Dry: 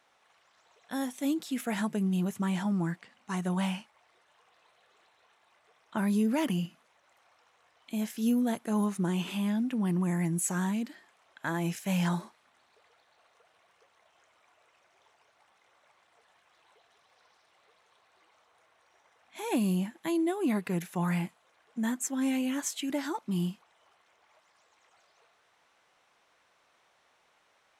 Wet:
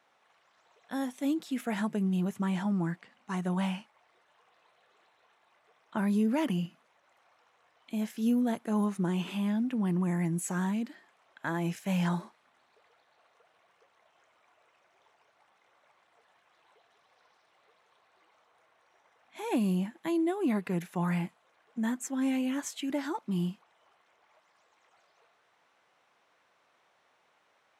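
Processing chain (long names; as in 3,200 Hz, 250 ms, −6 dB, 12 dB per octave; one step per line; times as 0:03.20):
high-pass filter 100 Hz
high-shelf EQ 3,900 Hz −7 dB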